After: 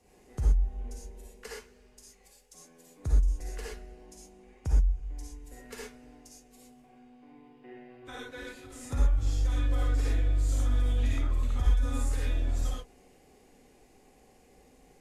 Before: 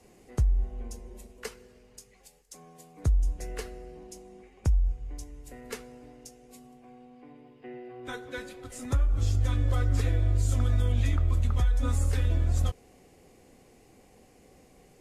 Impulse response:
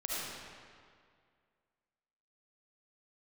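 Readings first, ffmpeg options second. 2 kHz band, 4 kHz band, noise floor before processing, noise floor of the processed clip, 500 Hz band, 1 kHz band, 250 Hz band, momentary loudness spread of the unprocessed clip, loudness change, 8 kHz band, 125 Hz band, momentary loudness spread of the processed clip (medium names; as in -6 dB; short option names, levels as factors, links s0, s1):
-2.0 dB, -1.5 dB, -58 dBFS, -60 dBFS, -3.5 dB, -2.5 dB, -2.5 dB, 19 LU, -2.0 dB, -2.0 dB, -4.5 dB, 18 LU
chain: -filter_complex "[1:a]atrim=start_sample=2205,afade=t=out:st=0.22:d=0.01,atrim=end_sample=10143,asetrate=57330,aresample=44100[s0];[0:a][s0]afir=irnorm=-1:irlink=0,volume=0.794"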